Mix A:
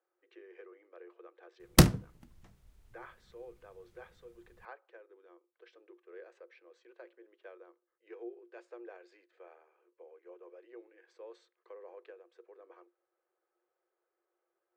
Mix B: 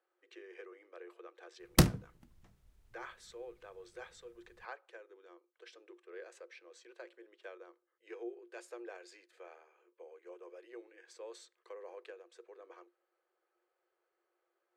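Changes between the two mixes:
speech: remove tape spacing loss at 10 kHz 26 dB; background -4.5 dB

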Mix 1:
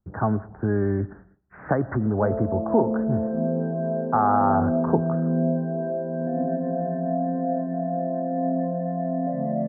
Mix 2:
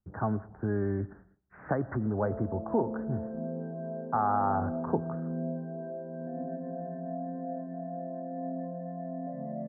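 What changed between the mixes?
speech -7.0 dB; background -11.5 dB

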